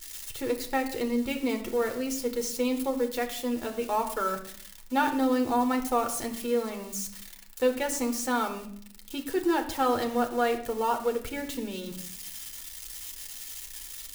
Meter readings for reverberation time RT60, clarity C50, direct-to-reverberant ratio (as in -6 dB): 0.60 s, 11.0 dB, 4.0 dB